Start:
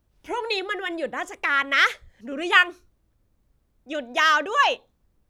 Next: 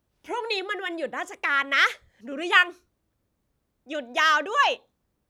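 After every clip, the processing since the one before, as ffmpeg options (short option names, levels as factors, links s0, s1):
-af "highpass=f=140:p=1,volume=0.841"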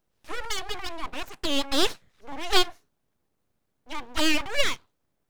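-af "aeval=exprs='abs(val(0))':c=same"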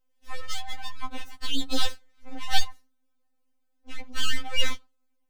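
-af "afftfilt=real='re*3.46*eq(mod(b,12),0)':imag='im*3.46*eq(mod(b,12),0)':win_size=2048:overlap=0.75,volume=0.841"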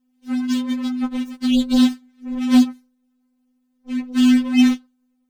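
-af "aeval=exprs='val(0)*sin(2*PI*250*n/s)':c=same,volume=3.55,asoftclip=hard,volume=0.282,acontrast=36"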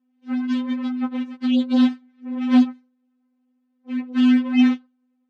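-af "highpass=210,lowpass=2600"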